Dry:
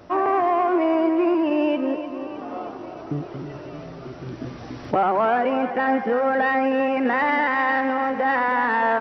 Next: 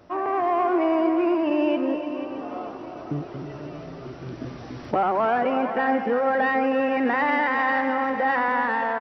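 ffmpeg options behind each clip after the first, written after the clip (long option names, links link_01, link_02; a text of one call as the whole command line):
ffmpeg -i in.wav -af "dynaudnorm=framelen=110:gausssize=7:maxgain=4.5dB,aecho=1:1:486:0.282,volume=-6dB" out.wav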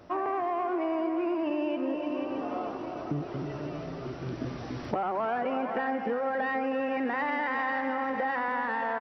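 ffmpeg -i in.wav -af "acompressor=threshold=-27dB:ratio=6" out.wav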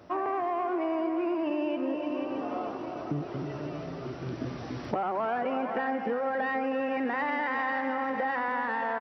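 ffmpeg -i in.wav -af "highpass=62" out.wav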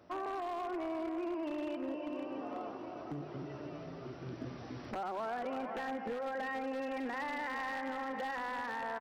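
ffmpeg -i in.wav -af "aeval=exprs='0.0631*(abs(mod(val(0)/0.0631+3,4)-2)-1)':channel_layout=same,bandreject=frequency=50:width_type=h:width=6,bandreject=frequency=100:width_type=h:width=6,bandreject=frequency=150:width_type=h:width=6,volume=-8dB" out.wav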